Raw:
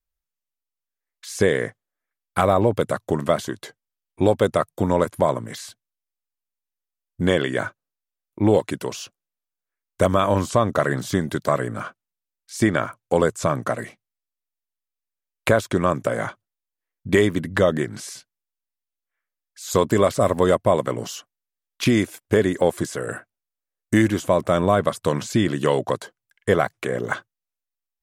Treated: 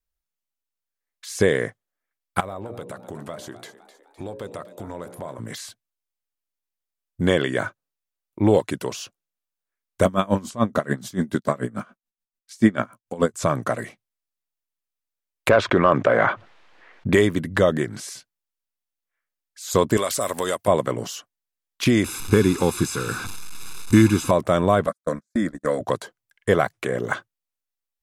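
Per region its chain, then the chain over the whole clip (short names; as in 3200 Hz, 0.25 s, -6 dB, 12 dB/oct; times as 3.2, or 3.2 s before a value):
2.4–5.39 notches 60/120/180/240/300/360/420/480/540/600 Hz + compressor 2.5:1, threshold -37 dBFS + frequency-shifting echo 0.256 s, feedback 50%, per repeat +83 Hz, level -14 dB
10.05–13.34 bell 220 Hz +11.5 dB 0.45 oct + doubler 16 ms -12 dB + dB-linear tremolo 6.9 Hz, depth 22 dB
15.49–17.13 LPF 3300 Hz + overdrive pedal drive 12 dB, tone 1900 Hz, clips at -4.5 dBFS + fast leveller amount 50%
19.97–20.68 tilt +3.5 dB/oct + compressor 2.5:1, threshold -21 dBFS
22.04–24.31 delta modulation 64 kbps, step -28 dBFS + comb 0.8 ms, depth 89%
24.87–25.81 gate -23 dBFS, range -45 dB + fixed phaser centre 580 Hz, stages 8
whole clip: dry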